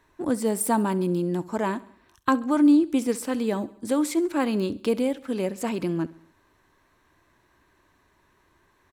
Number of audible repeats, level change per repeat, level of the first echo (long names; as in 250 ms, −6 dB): 3, −5.5 dB, −20.0 dB